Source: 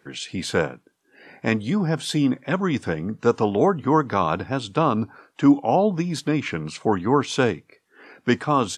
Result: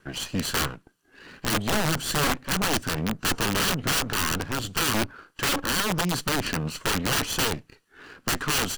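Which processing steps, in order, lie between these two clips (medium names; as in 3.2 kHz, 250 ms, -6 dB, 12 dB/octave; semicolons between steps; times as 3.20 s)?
comb filter that takes the minimum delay 0.68 ms; integer overflow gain 20.5 dB; trim +2 dB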